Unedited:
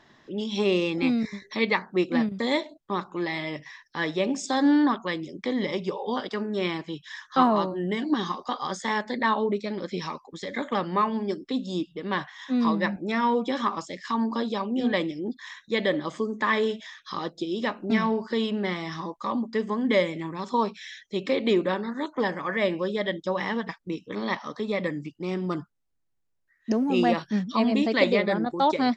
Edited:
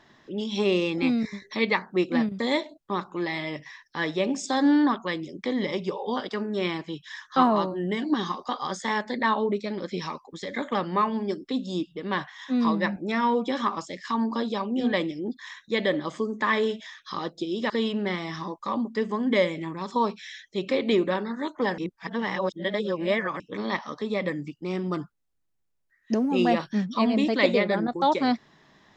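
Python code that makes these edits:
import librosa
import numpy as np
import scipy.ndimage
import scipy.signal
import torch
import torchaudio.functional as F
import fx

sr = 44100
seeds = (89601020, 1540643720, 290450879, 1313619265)

y = fx.edit(x, sr, fx.cut(start_s=17.7, length_s=0.58),
    fx.reverse_span(start_s=22.36, length_s=1.62), tone=tone)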